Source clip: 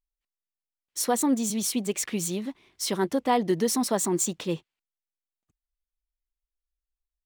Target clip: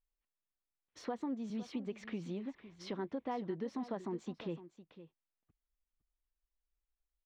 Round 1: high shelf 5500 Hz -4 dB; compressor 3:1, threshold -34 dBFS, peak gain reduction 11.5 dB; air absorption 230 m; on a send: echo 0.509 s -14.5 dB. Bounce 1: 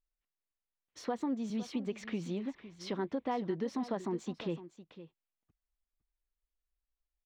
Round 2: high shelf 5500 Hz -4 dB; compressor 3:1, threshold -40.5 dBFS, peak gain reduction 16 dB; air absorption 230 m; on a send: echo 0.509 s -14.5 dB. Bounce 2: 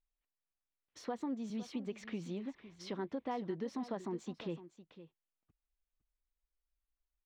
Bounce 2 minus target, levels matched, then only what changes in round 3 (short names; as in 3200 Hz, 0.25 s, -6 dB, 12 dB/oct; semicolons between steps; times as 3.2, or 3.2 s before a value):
8000 Hz band +3.0 dB
change: high shelf 5500 Hz -12.5 dB